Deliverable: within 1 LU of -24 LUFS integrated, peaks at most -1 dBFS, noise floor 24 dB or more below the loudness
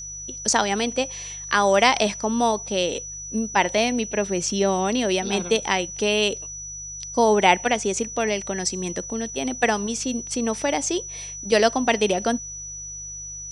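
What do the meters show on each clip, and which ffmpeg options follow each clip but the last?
hum 50 Hz; harmonics up to 150 Hz; hum level -44 dBFS; steady tone 5900 Hz; tone level -33 dBFS; loudness -23.0 LUFS; peak -1.0 dBFS; loudness target -24.0 LUFS
-> -af "bandreject=f=50:t=h:w=4,bandreject=f=100:t=h:w=4,bandreject=f=150:t=h:w=4"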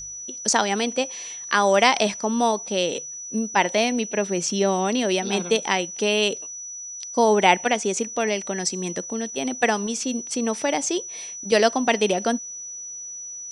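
hum none; steady tone 5900 Hz; tone level -33 dBFS
-> -af "bandreject=f=5.9k:w=30"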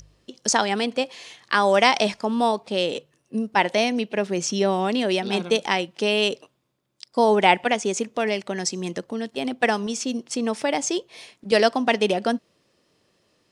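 steady tone none; loudness -23.0 LUFS; peak -1.0 dBFS; loudness target -24.0 LUFS
-> -af "volume=-1dB"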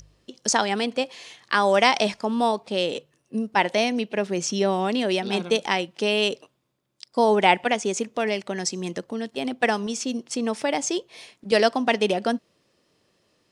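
loudness -24.0 LUFS; peak -2.0 dBFS; noise floor -69 dBFS

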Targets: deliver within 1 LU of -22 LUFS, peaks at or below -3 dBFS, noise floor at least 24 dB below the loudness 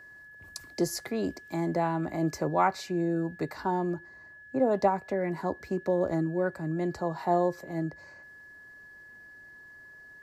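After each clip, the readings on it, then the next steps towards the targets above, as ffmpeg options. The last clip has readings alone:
steady tone 1700 Hz; tone level -48 dBFS; loudness -30.0 LUFS; peak -11.5 dBFS; loudness target -22.0 LUFS
-> -af "bandreject=f=1.7k:w=30"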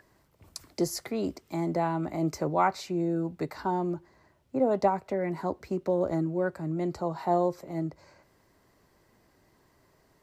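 steady tone none; loudness -30.0 LUFS; peak -11.5 dBFS; loudness target -22.0 LUFS
-> -af "volume=8dB"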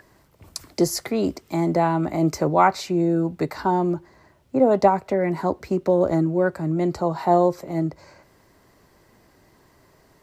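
loudness -22.0 LUFS; peak -3.5 dBFS; noise floor -58 dBFS

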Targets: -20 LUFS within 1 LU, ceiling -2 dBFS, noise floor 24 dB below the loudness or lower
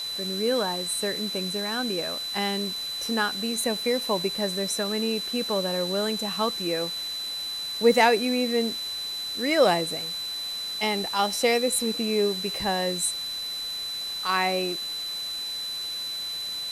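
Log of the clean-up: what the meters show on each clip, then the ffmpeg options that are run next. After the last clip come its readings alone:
steady tone 4000 Hz; tone level -30 dBFS; noise floor -33 dBFS; noise floor target -50 dBFS; loudness -26.0 LUFS; peak -7.0 dBFS; loudness target -20.0 LUFS
-> -af "bandreject=f=4k:w=30"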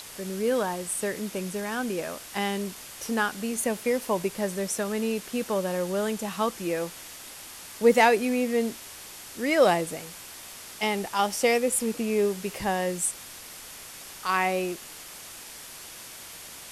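steady tone none; noise floor -44 dBFS; noise floor target -51 dBFS
-> -af "afftdn=nr=7:nf=-44"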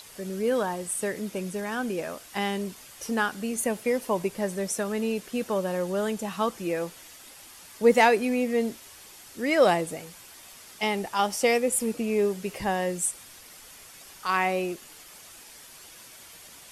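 noise floor -49 dBFS; noise floor target -51 dBFS
-> -af "afftdn=nr=6:nf=-49"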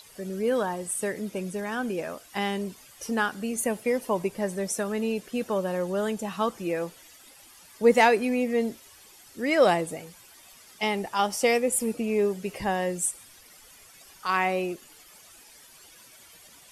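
noise floor -53 dBFS; loudness -27.0 LUFS; peak -7.0 dBFS; loudness target -20.0 LUFS
-> -af "volume=7dB,alimiter=limit=-2dB:level=0:latency=1"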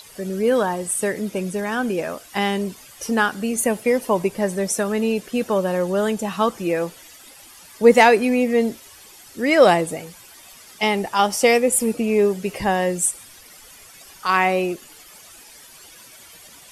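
loudness -20.0 LUFS; peak -2.0 dBFS; noise floor -46 dBFS

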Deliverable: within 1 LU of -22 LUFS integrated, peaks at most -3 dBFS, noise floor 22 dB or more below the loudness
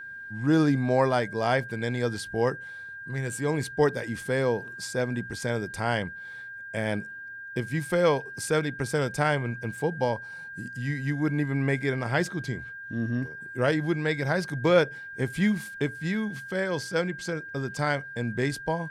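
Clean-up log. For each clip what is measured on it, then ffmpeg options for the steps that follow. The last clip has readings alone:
steady tone 1600 Hz; tone level -38 dBFS; loudness -28.0 LUFS; peak -8.5 dBFS; loudness target -22.0 LUFS
-> -af "bandreject=f=1.6k:w=30"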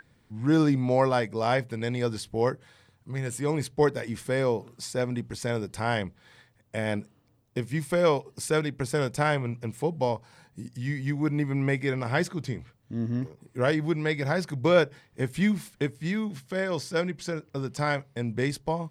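steady tone none; loudness -28.5 LUFS; peak -8.5 dBFS; loudness target -22.0 LUFS
-> -af "volume=6.5dB,alimiter=limit=-3dB:level=0:latency=1"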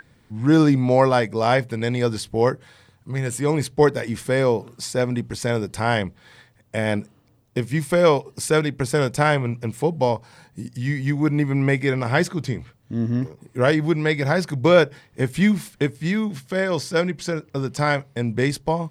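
loudness -22.0 LUFS; peak -3.0 dBFS; noise floor -58 dBFS

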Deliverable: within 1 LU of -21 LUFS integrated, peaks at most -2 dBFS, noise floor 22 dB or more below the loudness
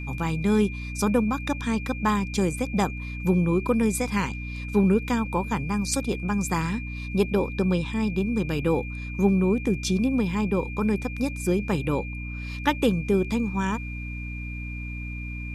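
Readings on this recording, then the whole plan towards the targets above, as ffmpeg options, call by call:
hum 60 Hz; harmonics up to 300 Hz; hum level -31 dBFS; steady tone 2400 Hz; tone level -38 dBFS; loudness -26.0 LUFS; peak -8.0 dBFS; loudness target -21.0 LUFS
-> -af "bandreject=f=60:t=h:w=6,bandreject=f=120:t=h:w=6,bandreject=f=180:t=h:w=6,bandreject=f=240:t=h:w=6,bandreject=f=300:t=h:w=6"
-af "bandreject=f=2.4k:w=30"
-af "volume=5dB"

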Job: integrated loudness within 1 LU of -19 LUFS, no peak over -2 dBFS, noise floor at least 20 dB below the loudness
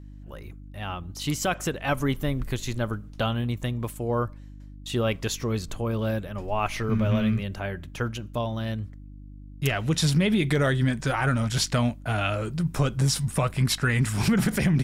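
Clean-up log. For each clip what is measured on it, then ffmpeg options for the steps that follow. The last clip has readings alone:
hum 50 Hz; harmonics up to 300 Hz; hum level -41 dBFS; loudness -26.5 LUFS; peak -13.0 dBFS; loudness target -19.0 LUFS
-> -af "bandreject=f=50:t=h:w=4,bandreject=f=100:t=h:w=4,bandreject=f=150:t=h:w=4,bandreject=f=200:t=h:w=4,bandreject=f=250:t=h:w=4,bandreject=f=300:t=h:w=4"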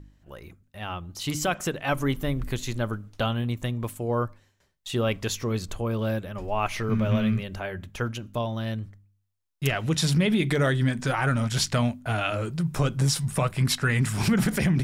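hum none; loudness -27.0 LUFS; peak -13.0 dBFS; loudness target -19.0 LUFS
-> -af "volume=8dB"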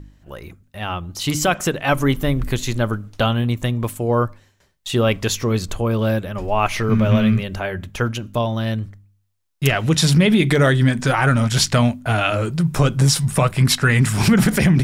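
loudness -19.0 LUFS; peak -5.0 dBFS; noise floor -62 dBFS

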